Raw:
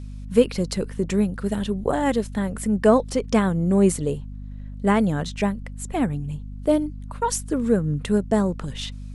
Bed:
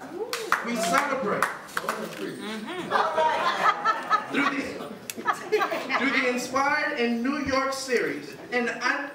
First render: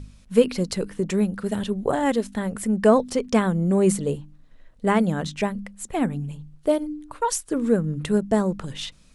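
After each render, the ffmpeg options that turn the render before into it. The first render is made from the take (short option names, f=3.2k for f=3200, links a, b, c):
-af "bandreject=f=50:t=h:w=4,bandreject=f=100:t=h:w=4,bandreject=f=150:t=h:w=4,bandreject=f=200:t=h:w=4,bandreject=f=250:t=h:w=4,bandreject=f=300:t=h:w=4"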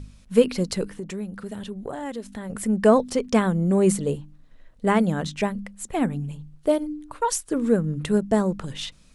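-filter_complex "[0:a]asettb=1/sr,asplit=3[a][b][c];[a]atrim=end=0.904[d];[b]atrim=start=0.9:end=2.5,asetpts=PTS-STARTPTS,afade=t=in:d=0.004:c=qsin,afade=t=out:st=1.596:d=0.004:c=qsin,acompressor=threshold=-36dB:ratio=2:attack=3.2:release=140:knee=1:detection=peak[e];[c]atrim=start=2.496[f];[d][e]acrossfade=d=0.004:c1=hsin:c2=qsin[g];[g][f]acrossfade=d=0.004:c1=qsin:c2=hsin"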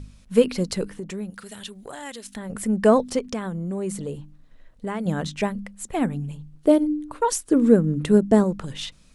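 -filter_complex "[0:a]asettb=1/sr,asplit=3[a][b][c];[a]atrim=end=1.304[d];[b]atrim=start=1.3:end=2.36,asetpts=PTS-STARTPTS,afade=t=in:d=0.004:c=qsin,afade=t=out:st=1.056:d=0.004:c=qsin,tiltshelf=f=1.3k:g=-9[e];[c]atrim=start=2.356[f];[d][e]acrossfade=d=0.004:c1=hsin:c2=qsin[g];[g][f]acrossfade=d=0.004:c1=qsin:c2=hsin,asettb=1/sr,asplit=3[h][i][j];[h]atrim=end=3.194[k];[i]atrim=start=3.19:end=5.06,asetpts=PTS-STARTPTS,afade=t=in:d=0.004:c=qsin,afade=t=out:st=1.866:d=0.004:c=qsin,acompressor=threshold=-29dB:ratio=2.5:attack=3.2:release=140:knee=1:detection=peak[l];[j]atrim=start=5.056[m];[k][l]acrossfade=d=0.004:c1=hsin:c2=qsin[n];[n][m]acrossfade=d=0.004:c1=qsin:c2=hsin,asettb=1/sr,asplit=3[o][p][q];[o]atrim=end=6.554[r];[p]atrim=start=6.55:end=8.44,asetpts=PTS-STARTPTS,afade=t=in:d=0.004:c=qsin,afade=t=out:st=1.886:d=0.004:c=qsin,equalizer=f=300:t=o:w=1.4:g=7.5[s];[q]atrim=start=8.436[t];[r][s]acrossfade=d=0.004:c1=hsin:c2=qsin[u];[u][t]acrossfade=d=0.004:c1=qsin:c2=hsin"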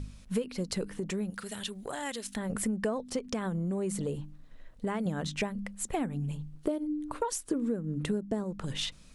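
-af "acompressor=threshold=-28dB:ratio=12"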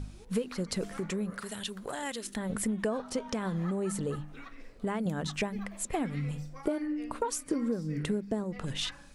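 -filter_complex "[1:a]volume=-25dB[a];[0:a][a]amix=inputs=2:normalize=0"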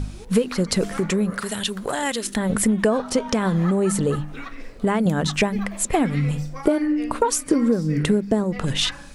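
-af "volume=12dB"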